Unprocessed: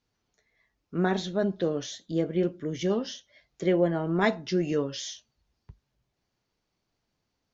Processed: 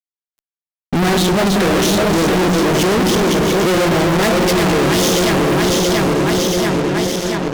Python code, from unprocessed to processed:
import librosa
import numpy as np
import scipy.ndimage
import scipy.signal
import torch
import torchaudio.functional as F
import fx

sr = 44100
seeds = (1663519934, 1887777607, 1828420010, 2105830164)

y = fx.reverse_delay_fb(x, sr, ms=341, feedback_pct=71, wet_db=-6)
y = fx.echo_stepped(y, sr, ms=121, hz=200.0, octaves=0.7, feedback_pct=70, wet_db=-5.5)
y = fx.fuzz(y, sr, gain_db=50.0, gate_db=-52.0)